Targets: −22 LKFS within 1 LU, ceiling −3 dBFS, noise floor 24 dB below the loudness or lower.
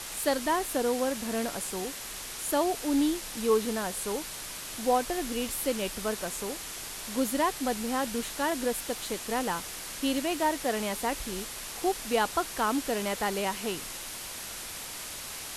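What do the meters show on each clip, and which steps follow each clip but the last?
background noise floor −40 dBFS; target noise floor −55 dBFS; integrated loudness −30.5 LKFS; sample peak −13.5 dBFS; target loudness −22.0 LKFS
→ noise reduction from a noise print 15 dB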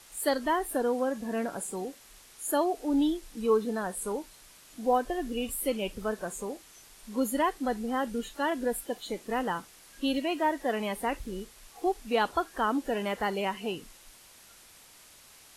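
background noise floor −55 dBFS; integrated loudness −31.0 LKFS; sample peak −13.5 dBFS; target loudness −22.0 LKFS
→ level +9 dB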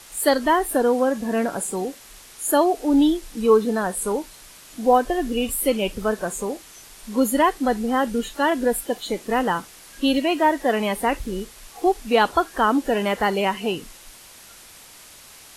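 integrated loudness −22.0 LKFS; sample peak −4.5 dBFS; background noise floor −46 dBFS

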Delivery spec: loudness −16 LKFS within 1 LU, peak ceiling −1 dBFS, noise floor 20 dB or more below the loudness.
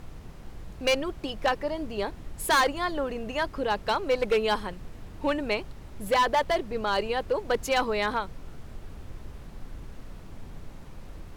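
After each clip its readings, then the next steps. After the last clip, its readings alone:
share of clipped samples 1.1%; peaks flattened at −18.0 dBFS; background noise floor −45 dBFS; target noise floor −48 dBFS; integrated loudness −27.5 LKFS; sample peak −18.0 dBFS; target loudness −16.0 LKFS
→ clipped peaks rebuilt −18 dBFS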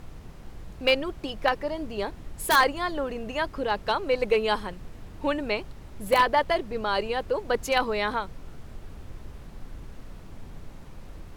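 share of clipped samples 0.0%; background noise floor −45 dBFS; target noise floor −47 dBFS
→ noise reduction from a noise print 6 dB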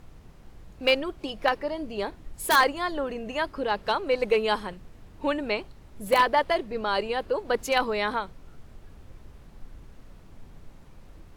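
background noise floor −50 dBFS; integrated loudness −26.5 LKFS; sample peak −9.0 dBFS; target loudness −16.0 LKFS
→ level +10.5 dB
brickwall limiter −1 dBFS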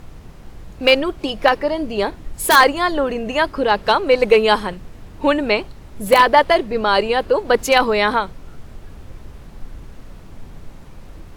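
integrated loudness −16.5 LKFS; sample peak −1.0 dBFS; background noise floor −40 dBFS

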